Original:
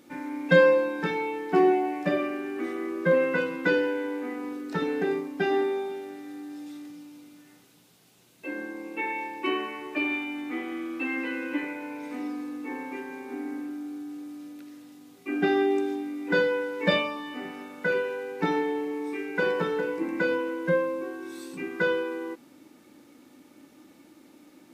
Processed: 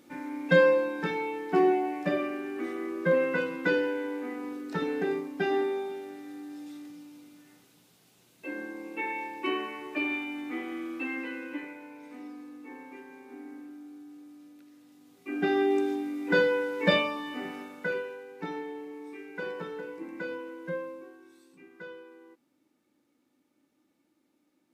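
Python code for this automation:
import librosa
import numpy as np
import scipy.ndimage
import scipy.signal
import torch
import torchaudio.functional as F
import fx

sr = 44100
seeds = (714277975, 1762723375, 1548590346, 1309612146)

y = fx.gain(x, sr, db=fx.line((10.9, -2.5), (11.92, -10.0), (14.71, -10.0), (15.81, 0.0), (17.55, 0.0), (18.25, -10.5), (20.88, -10.5), (21.43, -19.0)))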